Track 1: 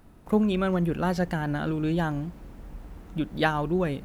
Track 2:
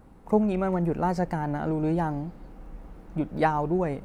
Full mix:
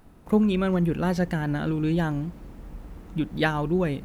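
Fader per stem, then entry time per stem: +0.5, −9.5 decibels; 0.00, 0.00 seconds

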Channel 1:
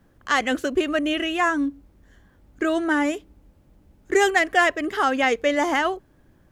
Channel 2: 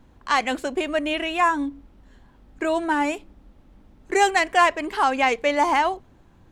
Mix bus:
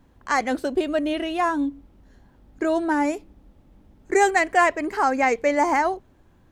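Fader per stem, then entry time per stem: −6.0, −4.0 decibels; 0.00, 0.00 seconds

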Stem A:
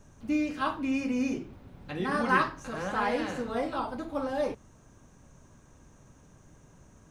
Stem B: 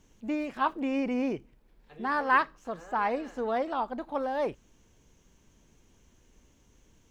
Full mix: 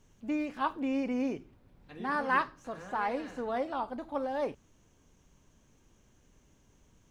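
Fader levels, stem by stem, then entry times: −13.0, −4.0 decibels; 0.00, 0.00 seconds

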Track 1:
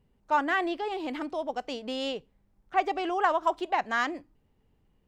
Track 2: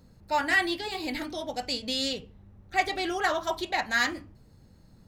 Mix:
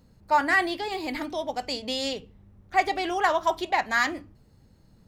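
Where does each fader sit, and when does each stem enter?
0.0, −2.0 decibels; 0.00, 0.00 seconds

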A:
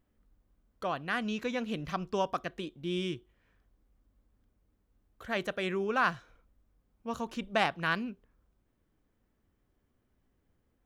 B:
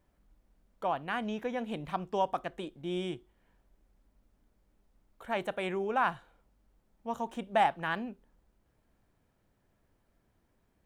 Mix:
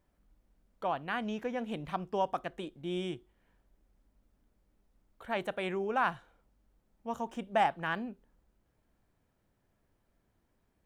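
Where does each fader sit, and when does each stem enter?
−16.0, −2.5 decibels; 0.00, 0.00 seconds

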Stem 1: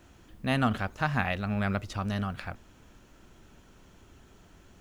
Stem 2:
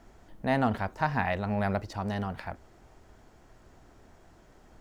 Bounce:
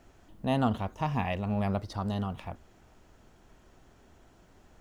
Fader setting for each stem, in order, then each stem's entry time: −7.5, −4.0 decibels; 0.00, 0.00 seconds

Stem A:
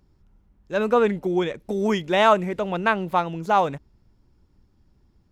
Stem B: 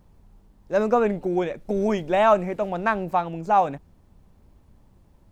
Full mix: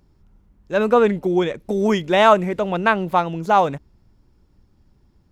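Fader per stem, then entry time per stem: +3.0, −14.0 decibels; 0.00, 0.00 seconds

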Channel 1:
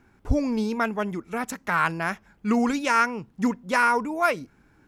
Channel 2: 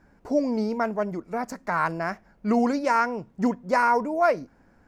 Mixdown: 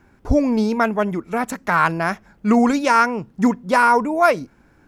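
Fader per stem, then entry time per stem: +3.0, −0.5 decibels; 0.00, 0.00 seconds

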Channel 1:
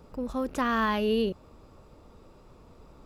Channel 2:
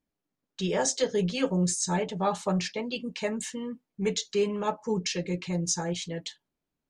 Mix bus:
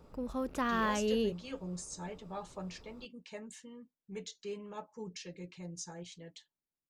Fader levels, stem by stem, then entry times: −5.5, −15.5 decibels; 0.00, 0.10 seconds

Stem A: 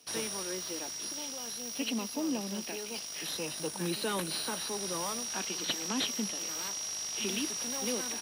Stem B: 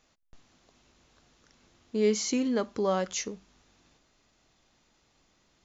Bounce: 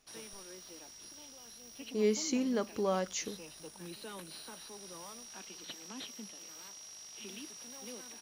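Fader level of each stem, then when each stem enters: −13.0, −4.5 decibels; 0.00, 0.00 seconds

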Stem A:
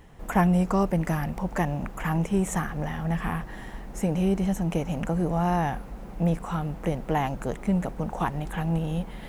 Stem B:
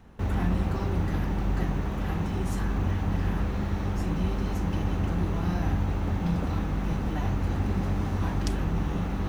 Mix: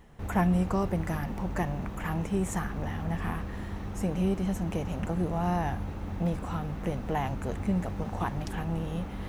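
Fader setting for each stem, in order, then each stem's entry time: −5.0, −8.5 decibels; 0.00, 0.00 seconds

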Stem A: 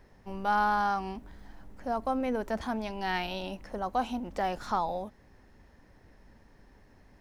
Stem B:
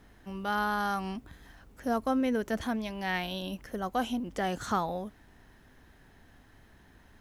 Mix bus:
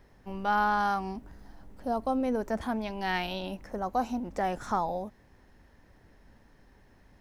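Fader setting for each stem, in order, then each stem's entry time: −1.5, −10.0 decibels; 0.00, 0.00 seconds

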